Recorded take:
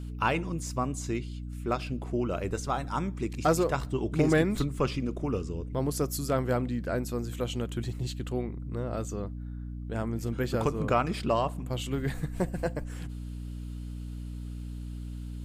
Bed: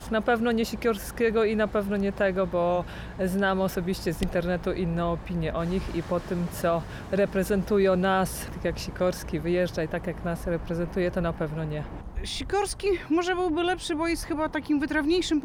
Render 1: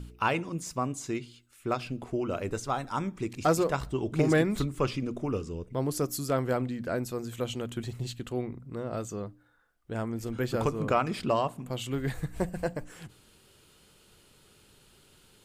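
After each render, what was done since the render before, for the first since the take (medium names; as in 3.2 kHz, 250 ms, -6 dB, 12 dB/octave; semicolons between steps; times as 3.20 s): de-hum 60 Hz, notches 5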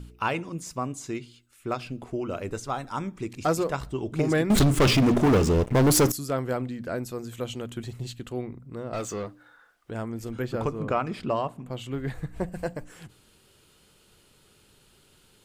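4.50–6.12 s: waveshaping leveller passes 5; 8.93–9.91 s: overdrive pedal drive 19 dB, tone 5.2 kHz, clips at -23 dBFS; 10.42–12.52 s: treble shelf 4.1 kHz -9 dB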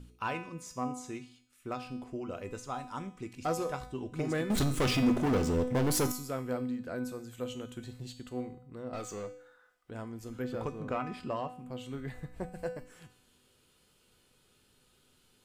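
feedback comb 250 Hz, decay 0.65 s, harmonics all, mix 80%; in parallel at -4 dB: one-sided clip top -33.5 dBFS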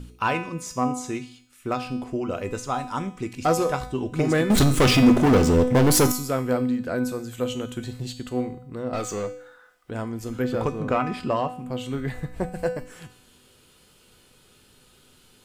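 trim +11 dB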